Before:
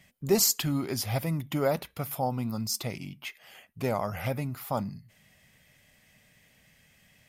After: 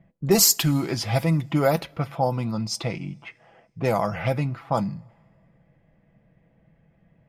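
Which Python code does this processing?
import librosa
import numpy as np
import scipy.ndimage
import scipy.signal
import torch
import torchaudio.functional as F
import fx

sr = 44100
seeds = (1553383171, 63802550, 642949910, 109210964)

y = fx.env_lowpass(x, sr, base_hz=680.0, full_db=-23.5)
y = y + 0.45 * np.pad(y, (int(6.0 * sr / 1000.0), 0))[:len(y)]
y = fx.rev_double_slope(y, sr, seeds[0], early_s=0.23, late_s=2.2, knee_db=-19, drr_db=19.0)
y = y * librosa.db_to_amplitude(6.0)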